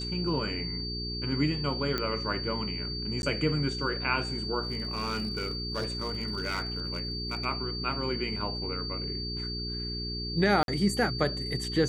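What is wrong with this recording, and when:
hum 60 Hz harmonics 7 -37 dBFS
whine 4.6 kHz -35 dBFS
1.98 s: pop -16 dBFS
3.22–3.23 s: dropout
4.63–7.46 s: clipped -26.5 dBFS
10.63–10.68 s: dropout 52 ms

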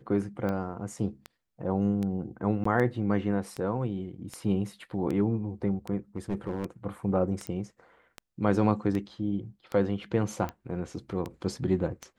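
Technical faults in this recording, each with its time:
tick 78 rpm -21 dBFS
2.64–2.65 s: dropout 14 ms
6.16–6.65 s: clipped -25 dBFS
7.47 s: pop -21 dBFS

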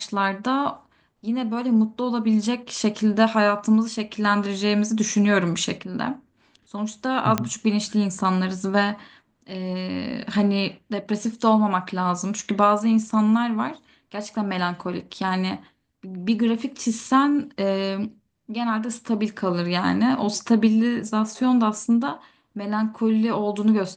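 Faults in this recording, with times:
7.38 s: pop -7 dBFS

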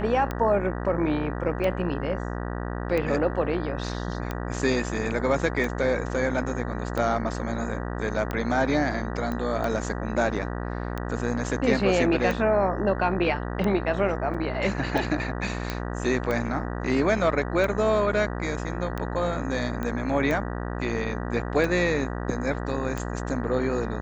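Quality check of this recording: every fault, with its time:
buzz 60 Hz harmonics 32 -31 dBFS
tick 45 rpm -16 dBFS
9.32 s: pop -19 dBFS
14.34–14.35 s: dropout 5.3 ms
15.70 s: pop -13 dBFS
19.83 s: pop -18 dBFS

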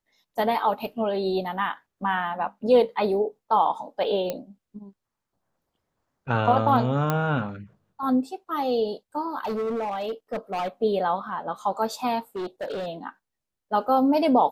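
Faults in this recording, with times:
4.30 s: pop -14 dBFS
7.10 s: pop -10 dBFS
9.39–10.68 s: clipped -24.5 dBFS
12.36–12.88 s: clipped -27.5 dBFS

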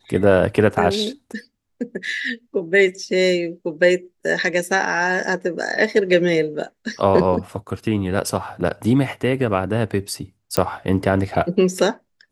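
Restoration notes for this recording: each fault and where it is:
10.57 s: pop -4 dBFS

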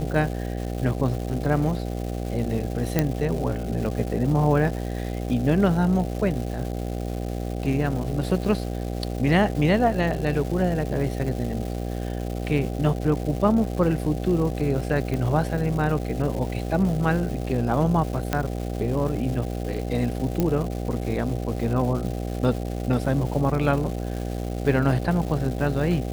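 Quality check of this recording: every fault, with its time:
buzz 60 Hz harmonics 13 -29 dBFS
crackle 510 per s -32 dBFS
2.99 s: pop -6 dBFS
15.14 s: pop -16 dBFS
18.33 s: pop -8 dBFS
20.40 s: pop -10 dBFS

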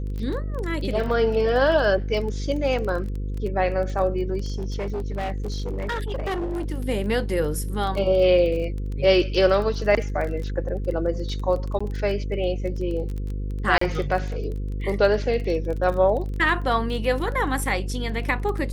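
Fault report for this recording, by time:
buzz 50 Hz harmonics 10 -28 dBFS
crackle 19 per s -29 dBFS
4.52–6.66 s: clipped -23.5 dBFS
11.79–11.80 s: dropout 15 ms
13.78–13.81 s: dropout 34 ms

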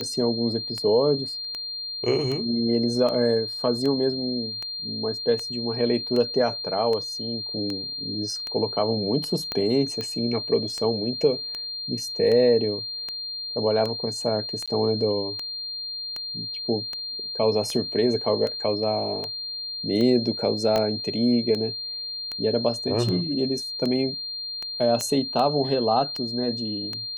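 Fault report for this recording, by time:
tick 78 rpm -17 dBFS
whine 4.2 kHz -30 dBFS
9.52 s: pop -14 dBFS
14.66–14.68 s: dropout 16 ms
20.76 s: pop -10 dBFS
25.01 s: pop -12 dBFS

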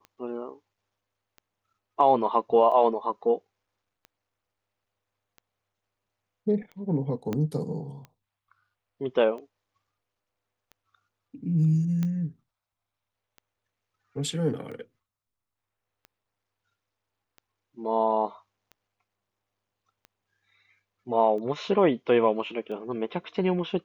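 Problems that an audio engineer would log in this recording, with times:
tick 45 rpm -31 dBFS
7.33 s: pop -17 dBFS
12.03 s: pop -18 dBFS

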